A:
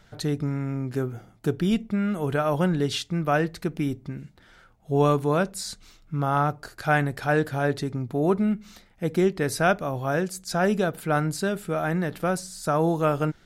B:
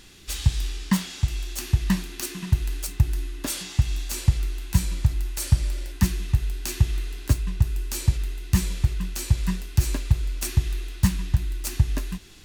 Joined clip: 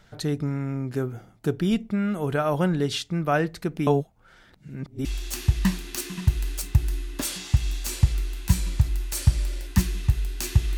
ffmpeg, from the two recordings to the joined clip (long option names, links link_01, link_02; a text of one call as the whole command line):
ffmpeg -i cue0.wav -i cue1.wav -filter_complex "[0:a]apad=whole_dur=10.77,atrim=end=10.77,asplit=2[link_01][link_02];[link_01]atrim=end=3.872[link_03];[link_02]atrim=start=3.868:end=5.052,asetpts=PTS-STARTPTS,areverse[link_04];[1:a]atrim=start=1.298:end=7.02[link_05];[link_03][link_04]acrossfade=duration=0.004:curve1=hsin:curve2=hsin[link_06];[link_06][link_05]acrossfade=duration=0.004:curve1=hsin:curve2=hsin" out.wav